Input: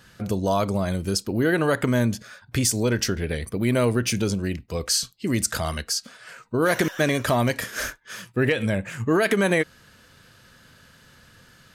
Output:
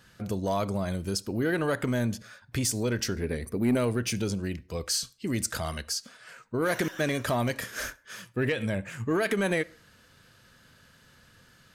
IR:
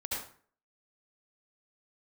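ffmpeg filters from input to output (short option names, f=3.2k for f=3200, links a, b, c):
-filter_complex "[0:a]asettb=1/sr,asplit=3[a][b][c];[a]atrim=end=3.144[d];[b]atrim=start=3.14:end=3.77,asetpts=PTS-STARTPTS,afade=t=in:d=0.004:c=qsin,afade=t=out:st=0.626:d=0.004:c=qsin,equalizer=f=250:t=o:w=0.33:g=7,equalizer=f=400:t=o:w=0.33:g=5,equalizer=f=3.15k:t=o:w=0.33:g=-12,equalizer=f=12.5k:t=o:w=0.33:g=4[e];[c]atrim=start=3.766[f];[d][e]acrossfade=d=0.004:c1=hsin:c2=qsin[g];[g][f]acrossfade=d=0.004:c1=qsin:c2=hsin,asoftclip=type=tanh:threshold=-10.5dB,asplit=2[h][i];[1:a]atrim=start_sample=2205,asetrate=48510,aresample=44100[j];[i][j]afir=irnorm=-1:irlink=0,volume=-26dB[k];[h][k]amix=inputs=2:normalize=0,volume=-5.5dB"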